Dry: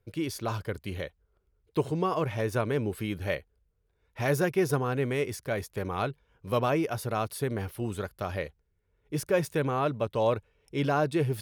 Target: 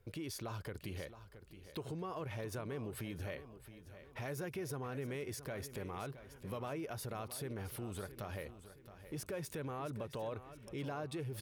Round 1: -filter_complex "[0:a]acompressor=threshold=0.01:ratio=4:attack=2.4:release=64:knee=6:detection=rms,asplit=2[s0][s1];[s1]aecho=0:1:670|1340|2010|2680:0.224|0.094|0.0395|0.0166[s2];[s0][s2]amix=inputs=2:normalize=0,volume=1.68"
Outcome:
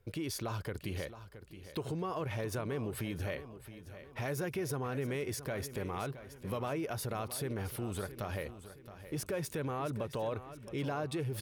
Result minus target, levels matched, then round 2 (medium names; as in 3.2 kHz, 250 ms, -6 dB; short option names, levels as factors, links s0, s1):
compression: peak gain reduction -5.5 dB
-filter_complex "[0:a]acompressor=threshold=0.00422:ratio=4:attack=2.4:release=64:knee=6:detection=rms,asplit=2[s0][s1];[s1]aecho=0:1:670|1340|2010|2680:0.224|0.094|0.0395|0.0166[s2];[s0][s2]amix=inputs=2:normalize=0,volume=1.68"